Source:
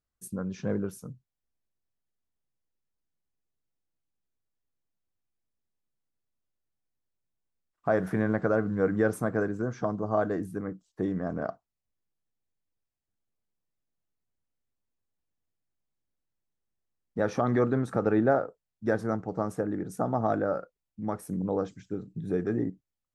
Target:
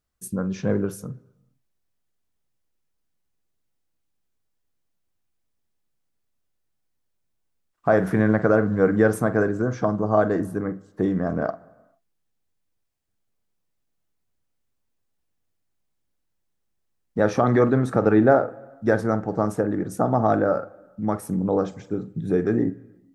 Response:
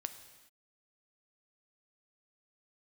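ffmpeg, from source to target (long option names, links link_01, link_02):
-filter_complex "[0:a]asplit=2[link_01][link_02];[1:a]atrim=start_sample=2205,lowpass=3000,adelay=47[link_03];[link_02][link_03]afir=irnorm=-1:irlink=0,volume=-10.5dB[link_04];[link_01][link_04]amix=inputs=2:normalize=0,volume=7dB"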